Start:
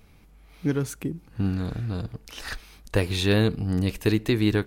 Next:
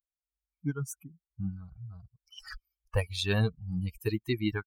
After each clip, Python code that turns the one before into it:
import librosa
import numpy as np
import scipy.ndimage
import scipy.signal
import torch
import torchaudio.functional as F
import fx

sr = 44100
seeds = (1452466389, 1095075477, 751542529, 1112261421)

y = fx.bin_expand(x, sr, power=3.0)
y = fx.peak_eq(y, sr, hz=290.0, db=-5.0, octaves=1.4)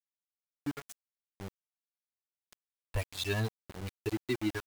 y = x + 0.7 * np.pad(x, (int(3.0 * sr / 1000.0), 0))[:len(x)]
y = np.where(np.abs(y) >= 10.0 ** (-31.5 / 20.0), y, 0.0)
y = y * 10.0 ** (-5.0 / 20.0)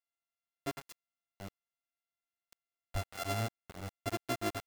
y = np.r_[np.sort(x[:len(x) // 64 * 64].reshape(-1, 64), axis=1).ravel(), x[len(x) // 64 * 64:]]
y = y * 10.0 ** (-3.0 / 20.0)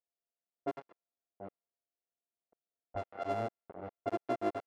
y = fx.bandpass_q(x, sr, hz=530.0, q=1.1)
y = fx.env_lowpass(y, sr, base_hz=610.0, full_db=-38.0)
y = y * 10.0 ** (5.5 / 20.0)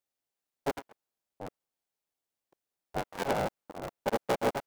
y = fx.cycle_switch(x, sr, every=3, mode='inverted')
y = y * 10.0 ** (5.0 / 20.0)